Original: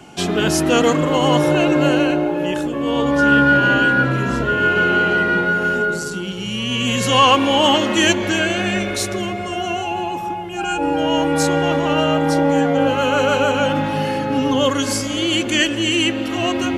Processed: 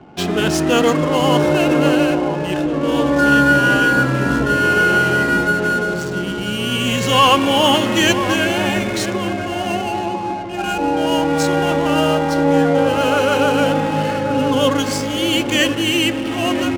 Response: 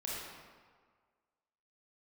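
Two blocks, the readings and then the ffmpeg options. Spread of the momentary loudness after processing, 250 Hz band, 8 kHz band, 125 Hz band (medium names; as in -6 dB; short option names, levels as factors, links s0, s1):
8 LU, +1.0 dB, -0.5 dB, +1.5 dB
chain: -filter_complex "[0:a]asplit=2[s0][s1];[s1]adelay=983,lowpass=f=1000:p=1,volume=0.422,asplit=2[s2][s3];[s3]adelay=983,lowpass=f=1000:p=1,volume=0.52,asplit=2[s4][s5];[s5]adelay=983,lowpass=f=1000:p=1,volume=0.52,asplit=2[s6][s7];[s7]adelay=983,lowpass=f=1000:p=1,volume=0.52,asplit=2[s8][s9];[s9]adelay=983,lowpass=f=1000:p=1,volume=0.52,asplit=2[s10][s11];[s11]adelay=983,lowpass=f=1000:p=1,volume=0.52[s12];[s0][s2][s4][s6][s8][s10][s12]amix=inputs=7:normalize=0,adynamicsmooth=sensitivity=6.5:basefreq=770,asplit=2[s13][s14];[1:a]atrim=start_sample=2205[s15];[s14][s15]afir=irnorm=-1:irlink=0,volume=0.0794[s16];[s13][s16]amix=inputs=2:normalize=0"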